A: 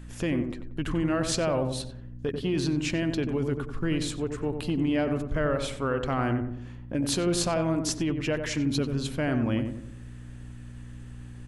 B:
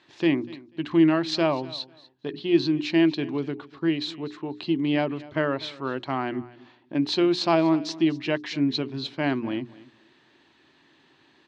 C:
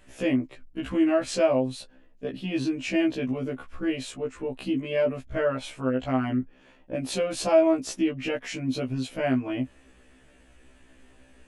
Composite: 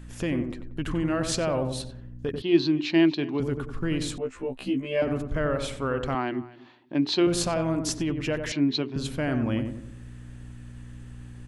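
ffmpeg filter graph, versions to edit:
-filter_complex "[1:a]asplit=3[s0][s1][s2];[0:a]asplit=5[s3][s4][s5][s6][s7];[s3]atrim=end=2.422[s8];[s0]atrim=start=2.418:end=3.402[s9];[s4]atrim=start=3.398:end=4.182[s10];[2:a]atrim=start=4.178:end=5.022[s11];[s5]atrim=start=5.018:end=6.152[s12];[s1]atrim=start=6.148:end=7.272[s13];[s6]atrim=start=7.268:end=8.522[s14];[s2]atrim=start=8.518:end=8.962[s15];[s7]atrim=start=8.958[s16];[s8][s9]acrossfade=d=0.004:c1=hsin:c2=hsin[s17];[s17][s10]acrossfade=d=0.004:c1=hsin:c2=hsin[s18];[s18][s11]acrossfade=d=0.004:c1=hsin:c2=hsin[s19];[s19][s12]acrossfade=d=0.004:c1=hsin:c2=hsin[s20];[s20][s13]acrossfade=d=0.004:c1=hsin:c2=hsin[s21];[s21][s14]acrossfade=d=0.004:c1=hsin:c2=hsin[s22];[s22][s15]acrossfade=d=0.004:c1=hsin:c2=hsin[s23];[s23][s16]acrossfade=d=0.004:c1=hsin:c2=hsin"

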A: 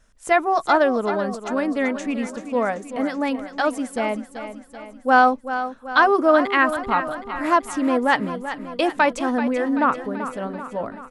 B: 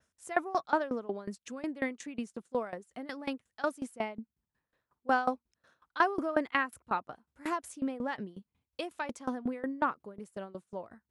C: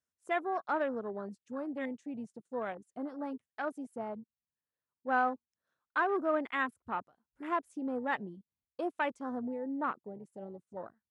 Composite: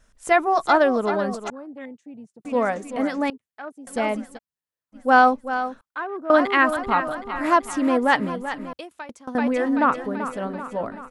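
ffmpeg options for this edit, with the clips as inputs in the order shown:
-filter_complex "[2:a]asplit=4[s0][s1][s2][s3];[0:a]asplit=6[s4][s5][s6][s7][s8][s9];[s4]atrim=end=1.502[s10];[s0]atrim=start=1.498:end=2.452[s11];[s5]atrim=start=2.448:end=3.302[s12];[s1]atrim=start=3.298:end=3.872[s13];[s6]atrim=start=3.868:end=4.39[s14];[s2]atrim=start=4.35:end=4.96[s15];[s7]atrim=start=4.92:end=5.812[s16];[s3]atrim=start=5.808:end=6.302[s17];[s8]atrim=start=6.298:end=8.732[s18];[1:a]atrim=start=8.728:end=9.352[s19];[s9]atrim=start=9.348[s20];[s10][s11]acrossfade=d=0.004:c1=hsin:c2=hsin[s21];[s21][s12]acrossfade=d=0.004:c1=hsin:c2=hsin[s22];[s22][s13]acrossfade=d=0.004:c1=hsin:c2=hsin[s23];[s23][s14]acrossfade=d=0.004:c1=hsin:c2=hsin[s24];[s24][s15]acrossfade=d=0.04:c1=tri:c2=tri[s25];[s25][s16]acrossfade=d=0.04:c1=tri:c2=tri[s26];[s26][s17]acrossfade=d=0.004:c1=hsin:c2=hsin[s27];[s27][s18]acrossfade=d=0.004:c1=hsin:c2=hsin[s28];[s28][s19]acrossfade=d=0.004:c1=hsin:c2=hsin[s29];[s29][s20]acrossfade=d=0.004:c1=hsin:c2=hsin"

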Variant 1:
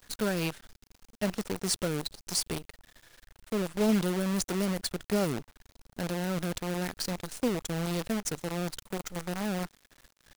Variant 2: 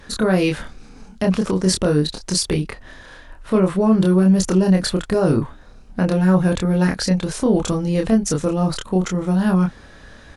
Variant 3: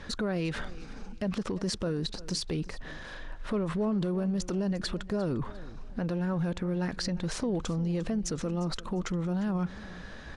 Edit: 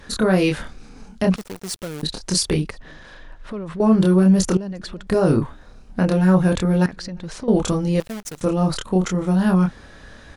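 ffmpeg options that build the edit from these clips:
-filter_complex "[0:a]asplit=2[s0][s1];[2:a]asplit=3[s2][s3][s4];[1:a]asplit=6[s5][s6][s7][s8][s9][s10];[s5]atrim=end=1.362[s11];[s0]atrim=start=1.358:end=2.032[s12];[s6]atrim=start=2.028:end=2.712[s13];[s2]atrim=start=2.708:end=3.802[s14];[s7]atrim=start=3.798:end=4.572[s15];[s3]atrim=start=4.568:end=5.072[s16];[s8]atrim=start=5.068:end=6.862[s17];[s4]atrim=start=6.858:end=7.482[s18];[s9]atrim=start=7.478:end=8.002[s19];[s1]atrim=start=7.998:end=8.412[s20];[s10]atrim=start=8.408[s21];[s11][s12]acrossfade=d=0.004:c1=hsin:c2=hsin[s22];[s22][s13]acrossfade=d=0.004:c1=hsin:c2=hsin[s23];[s23][s14]acrossfade=d=0.004:c1=hsin:c2=hsin[s24];[s24][s15]acrossfade=d=0.004:c1=hsin:c2=hsin[s25];[s25][s16]acrossfade=d=0.004:c1=hsin:c2=hsin[s26];[s26][s17]acrossfade=d=0.004:c1=hsin:c2=hsin[s27];[s27][s18]acrossfade=d=0.004:c1=hsin:c2=hsin[s28];[s28][s19]acrossfade=d=0.004:c1=hsin:c2=hsin[s29];[s29][s20]acrossfade=d=0.004:c1=hsin:c2=hsin[s30];[s30][s21]acrossfade=d=0.004:c1=hsin:c2=hsin"

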